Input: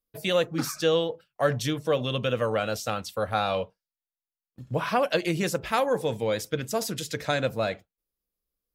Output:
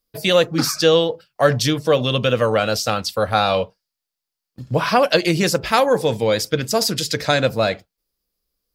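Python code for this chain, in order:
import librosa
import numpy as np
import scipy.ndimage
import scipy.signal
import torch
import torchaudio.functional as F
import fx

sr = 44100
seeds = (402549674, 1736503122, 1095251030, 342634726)

y = fx.peak_eq(x, sr, hz=4800.0, db=8.5, octaves=0.43)
y = y * librosa.db_to_amplitude(8.5)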